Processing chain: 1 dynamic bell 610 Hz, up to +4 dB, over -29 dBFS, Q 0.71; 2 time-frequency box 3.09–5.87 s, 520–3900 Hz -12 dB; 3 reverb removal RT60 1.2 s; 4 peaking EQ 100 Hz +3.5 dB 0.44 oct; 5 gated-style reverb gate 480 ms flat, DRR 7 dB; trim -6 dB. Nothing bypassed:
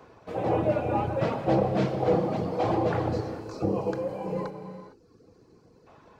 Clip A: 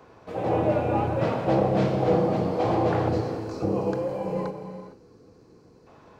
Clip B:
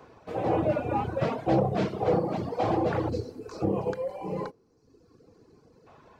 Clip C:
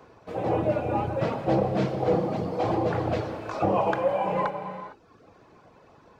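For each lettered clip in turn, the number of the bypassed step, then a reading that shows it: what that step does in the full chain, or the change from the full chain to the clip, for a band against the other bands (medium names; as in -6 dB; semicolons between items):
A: 3, loudness change +2.5 LU; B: 5, momentary loudness spread change -2 LU; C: 2, momentary loudness spread change -2 LU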